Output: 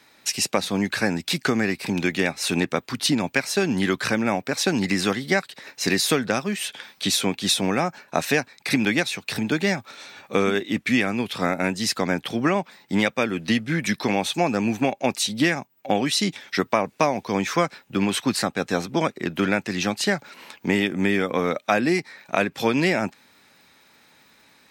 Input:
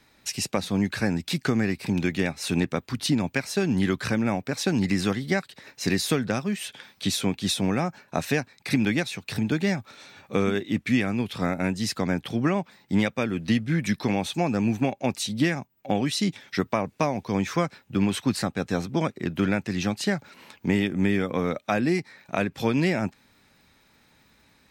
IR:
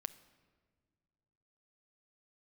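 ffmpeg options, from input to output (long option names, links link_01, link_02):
-af "highpass=frequency=360:poles=1,volume=6dB"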